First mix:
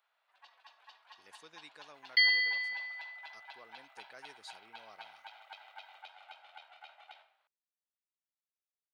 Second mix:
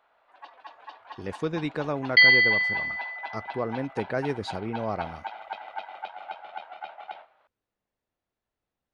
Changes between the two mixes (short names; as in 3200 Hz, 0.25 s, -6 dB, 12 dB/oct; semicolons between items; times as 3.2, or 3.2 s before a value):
speech +6.0 dB; first sound: send -10.5 dB; master: remove differentiator